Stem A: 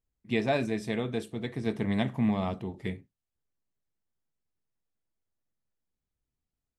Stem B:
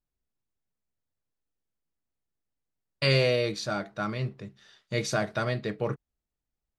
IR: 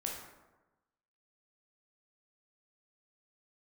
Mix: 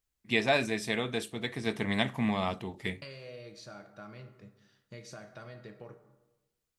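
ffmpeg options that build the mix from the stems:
-filter_complex "[0:a]tiltshelf=f=760:g=-6,volume=1.5dB[a];[1:a]bandreject=f=3.6k:w=15,acompressor=threshold=-32dB:ratio=6,volume=-15.5dB,asplit=2[b][c];[c]volume=-3dB[d];[2:a]atrim=start_sample=2205[e];[d][e]afir=irnorm=-1:irlink=0[f];[a][b][f]amix=inputs=3:normalize=0"

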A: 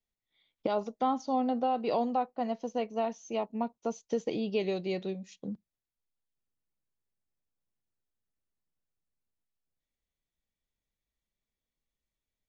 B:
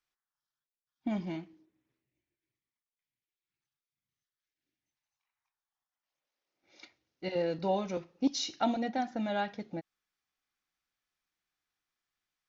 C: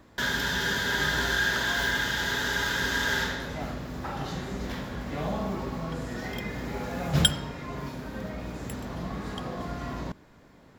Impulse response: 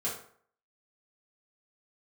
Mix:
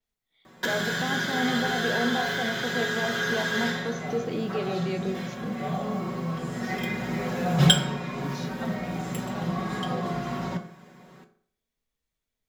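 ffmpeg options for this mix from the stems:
-filter_complex "[0:a]alimiter=level_in=3.5dB:limit=-24dB:level=0:latency=1,volume=-3.5dB,volume=2.5dB,asplit=3[a][b][c];[b]volume=-10.5dB[d];[1:a]volume=-10dB[e];[2:a]highpass=120,bandreject=f=4.4k:w=26,aecho=1:1:5.4:0.83,adelay=450,volume=-1dB,asplit=2[f][g];[g]volume=-5.5dB[h];[c]apad=whole_len=495767[i];[f][i]sidechaincompress=threshold=-55dB:ratio=8:attack=16:release=889[j];[3:a]atrim=start_sample=2205[k];[d][h]amix=inputs=2:normalize=0[l];[l][k]afir=irnorm=-1:irlink=0[m];[a][e][j][m]amix=inputs=4:normalize=0,adynamicequalizer=threshold=0.00562:dfrequency=6200:dqfactor=0.7:tfrequency=6200:tqfactor=0.7:attack=5:release=100:ratio=0.375:range=2.5:mode=cutabove:tftype=highshelf"

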